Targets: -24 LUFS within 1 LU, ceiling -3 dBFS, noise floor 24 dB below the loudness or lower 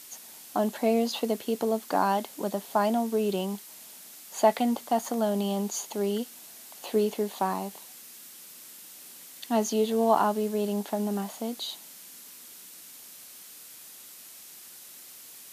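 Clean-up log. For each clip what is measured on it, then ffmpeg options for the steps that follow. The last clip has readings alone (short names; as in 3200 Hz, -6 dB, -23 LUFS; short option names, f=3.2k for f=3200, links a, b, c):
noise floor -48 dBFS; noise floor target -53 dBFS; loudness -28.5 LUFS; peak -9.5 dBFS; loudness target -24.0 LUFS
-> -af "afftdn=nr=6:nf=-48"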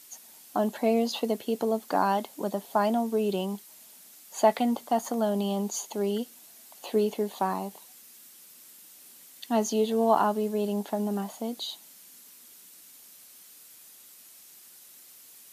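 noise floor -52 dBFS; noise floor target -53 dBFS
-> -af "afftdn=nr=6:nf=-52"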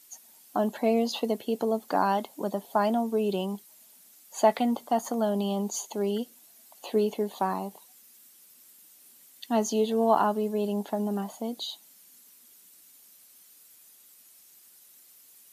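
noise floor -56 dBFS; loudness -28.0 LUFS; peak -10.0 dBFS; loudness target -24.0 LUFS
-> -af "volume=4dB"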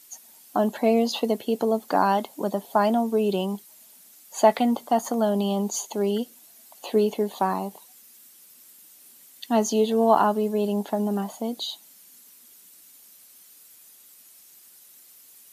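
loudness -24.0 LUFS; peak -6.0 dBFS; noise floor -52 dBFS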